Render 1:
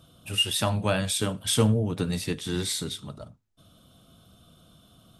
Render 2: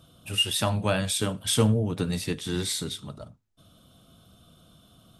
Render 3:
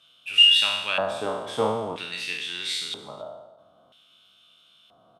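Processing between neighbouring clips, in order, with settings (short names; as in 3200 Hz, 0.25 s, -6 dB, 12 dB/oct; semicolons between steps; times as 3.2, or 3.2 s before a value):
nothing audible
spectral trails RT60 1.01 s; LFO band-pass square 0.51 Hz 770–2700 Hz; echo 0.276 s -24 dB; gain +7.5 dB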